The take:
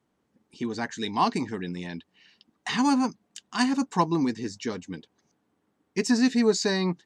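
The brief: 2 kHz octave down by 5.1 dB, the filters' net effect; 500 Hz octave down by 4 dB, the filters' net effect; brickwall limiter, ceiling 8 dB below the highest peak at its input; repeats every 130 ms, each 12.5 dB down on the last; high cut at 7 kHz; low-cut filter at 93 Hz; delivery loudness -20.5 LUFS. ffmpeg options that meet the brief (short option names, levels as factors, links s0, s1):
-af "highpass=93,lowpass=7000,equalizer=f=500:t=o:g=-5,equalizer=f=2000:t=o:g=-6,alimiter=limit=0.119:level=0:latency=1,aecho=1:1:130|260|390:0.237|0.0569|0.0137,volume=2.99"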